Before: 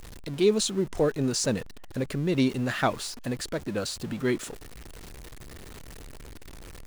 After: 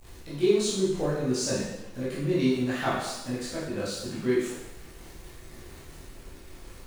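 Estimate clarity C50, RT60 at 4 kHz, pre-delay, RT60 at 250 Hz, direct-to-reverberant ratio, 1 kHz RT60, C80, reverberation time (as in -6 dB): 0.5 dB, 0.90 s, 13 ms, 0.85 s, -9.5 dB, 1.0 s, 3.5 dB, 0.95 s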